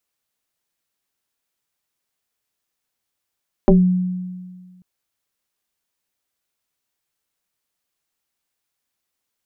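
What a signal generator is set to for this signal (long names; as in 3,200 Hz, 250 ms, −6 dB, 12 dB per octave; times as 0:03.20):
two-operator FM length 1.14 s, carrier 182 Hz, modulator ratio 1.1, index 2.8, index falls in 0.24 s exponential, decay 1.72 s, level −6.5 dB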